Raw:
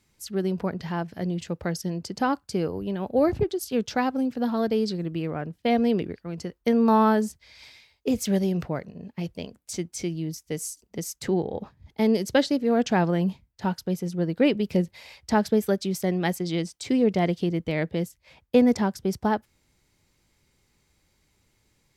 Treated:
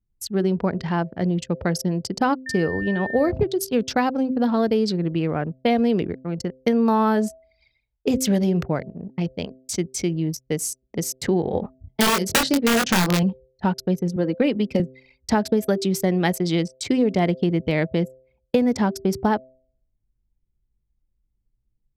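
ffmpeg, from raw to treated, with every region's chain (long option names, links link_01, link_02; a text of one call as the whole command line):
ffmpeg -i in.wav -filter_complex "[0:a]asettb=1/sr,asplit=3[link_01][link_02][link_03];[link_01]atrim=end=2.464[link_04];[link_02]atrim=start=2.46:end=3.29,asetpts=PTS-STARTPTS,afade=type=in:duration=0.004:curve=qsin,afade=type=out:start_time=0.826:duration=0.004:curve=qsin,aeval=exprs='val(0)+0.0178*sin(2*PI*1800*n/s)':channel_layout=same,highshelf=frequency=8600:gain=-3.5[link_05];[link_03]atrim=start=3.286[link_06];[link_04][link_05]acrossfade=duration=0.004:curve1=hsin:curve2=qsin[link_07];[link_07][link_06]acrossfade=duration=0.004:curve1=qsin:curve2=hsin,asettb=1/sr,asplit=3[link_08][link_09][link_10];[link_08]atrim=end=11.434[link_11];[link_09]atrim=start=11.43:end=13.23,asetpts=PTS-STARTPTS,afade=type=in:duration=0.004:curve=qsin,afade=type=out:start_time=1.796:duration=0.004:curve=qsin,aeval=exprs='(mod(5.96*val(0)+1,2)-1)/5.96':channel_layout=same,asplit=2[link_12][link_13];[link_13]adelay=22,volume=-3.5dB[link_14];[link_12][link_14]amix=inputs=2:normalize=0,atrim=end_sample=79380[link_15];[link_10]atrim=start=13.226[link_16];[link_11][link_15]acrossfade=duration=0.004:curve1=hsin:curve2=qsin[link_17];[link_17][link_16]acrossfade=duration=0.004:curve1=qsin:curve2=hsin,asettb=1/sr,asplit=3[link_18][link_19][link_20];[link_18]atrim=end=14.164[link_21];[link_19]atrim=start=14.16:end=14.8,asetpts=PTS-STARTPTS,afade=type=in:duration=0.004:curve=qsin,afade=type=out:start_time=0.636:duration=0.004:curve=qsin,acrossover=split=170|900[link_22][link_23][link_24];[link_22]acompressor=threshold=-43dB:ratio=4[link_25];[link_23]acompressor=threshold=-21dB:ratio=4[link_26];[link_24]acompressor=threshold=-32dB:ratio=4[link_27];[link_25][link_26][link_27]amix=inputs=3:normalize=0,aecho=1:1:3.8:0.38,atrim=end_sample=28224[link_28];[link_20]atrim=start=14.796[link_29];[link_21][link_28]acrossfade=duration=0.004:curve1=hsin:curve2=qsin[link_30];[link_30][link_29]acrossfade=duration=0.004:curve1=qsin:curve2=hsin,anlmdn=0.631,bandreject=frequency=130:width_type=h:width=4,bandreject=frequency=260:width_type=h:width=4,bandreject=frequency=390:width_type=h:width=4,bandreject=frequency=520:width_type=h:width=4,bandreject=frequency=650:width_type=h:width=4,acompressor=threshold=-22dB:ratio=6,volume=6.5dB" out.wav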